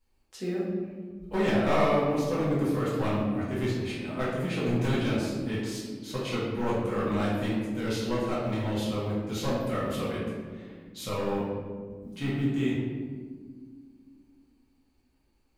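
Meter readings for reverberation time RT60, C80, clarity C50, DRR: 1.7 s, 2.0 dB, -0.5 dB, -8.5 dB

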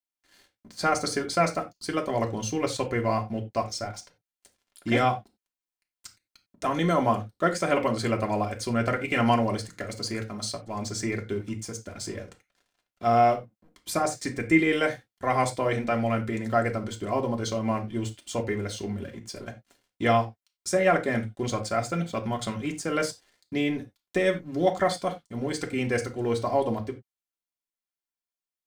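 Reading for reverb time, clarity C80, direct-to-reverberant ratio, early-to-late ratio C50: no single decay rate, 20.5 dB, 1.0 dB, 14.5 dB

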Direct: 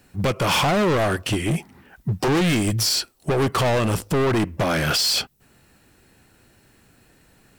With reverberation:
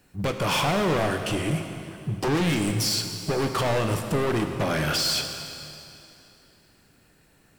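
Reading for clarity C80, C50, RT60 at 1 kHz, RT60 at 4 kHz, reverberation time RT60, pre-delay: 7.0 dB, 6.0 dB, 2.8 s, 2.6 s, 2.8 s, 4 ms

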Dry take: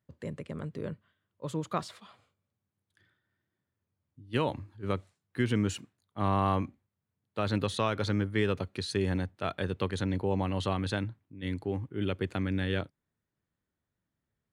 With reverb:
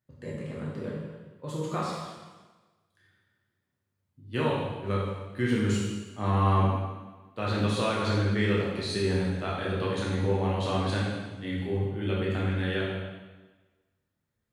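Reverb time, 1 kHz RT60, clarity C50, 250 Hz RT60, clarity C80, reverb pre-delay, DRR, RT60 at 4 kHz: 1.3 s, 1.3 s, 0.0 dB, 1.4 s, 2.0 dB, 5 ms, -6.0 dB, 1.2 s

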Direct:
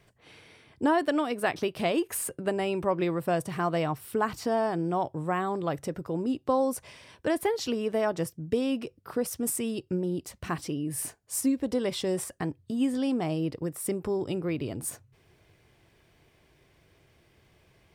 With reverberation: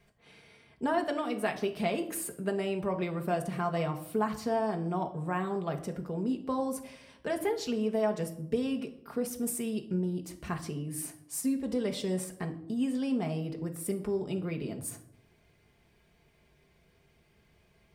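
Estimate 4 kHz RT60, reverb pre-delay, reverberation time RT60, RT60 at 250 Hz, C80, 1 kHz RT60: 0.45 s, 4 ms, 0.75 s, 0.95 s, 16.5 dB, 0.65 s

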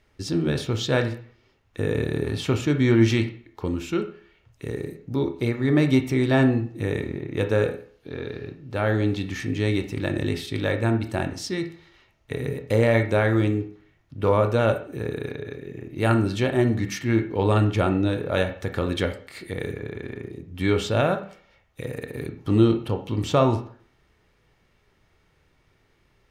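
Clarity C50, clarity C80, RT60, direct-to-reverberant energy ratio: 11.0 dB, 15.0 dB, 0.50 s, 6.5 dB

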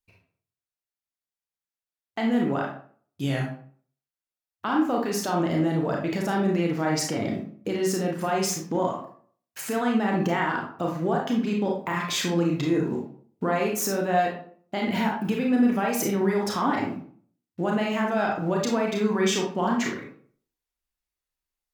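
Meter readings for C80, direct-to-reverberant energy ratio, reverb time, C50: 9.5 dB, -1.0 dB, 0.50 s, 4.0 dB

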